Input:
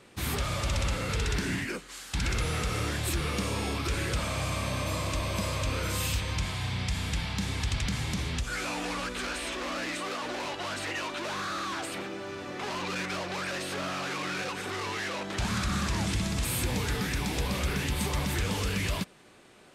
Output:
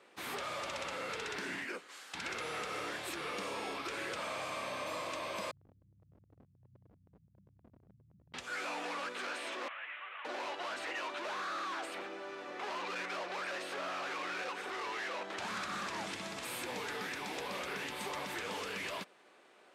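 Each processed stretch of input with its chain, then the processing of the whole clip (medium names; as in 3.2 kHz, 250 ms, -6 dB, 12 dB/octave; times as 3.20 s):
5.51–8.34 s: inverse Chebyshev low-pass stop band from 620 Hz, stop band 70 dB + tremolo saw up 9.6 Hz, depth 55% + overload inside the chain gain 29.5 dB
9.68–10.25 s: CVSD coder 16 kbps + high-pass 1.5 kHz
whole clip: high-pass 440 Hz 12 dB/octave; treble shelf 4 kHz -11 dB; trim -3 dB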